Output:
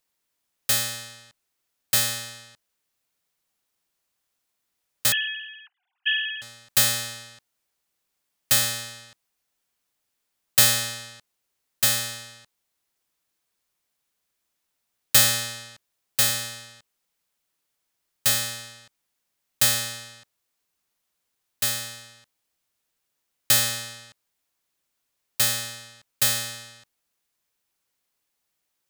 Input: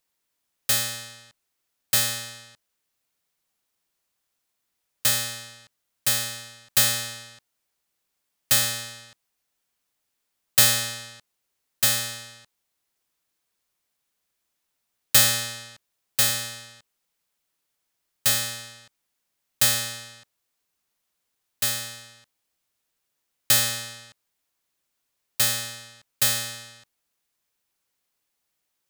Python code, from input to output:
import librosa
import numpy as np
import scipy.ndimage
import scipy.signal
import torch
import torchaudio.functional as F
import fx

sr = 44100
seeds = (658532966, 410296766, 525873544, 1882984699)

y = fx.sine_speech(x, sr, at=(5.12, 6.42))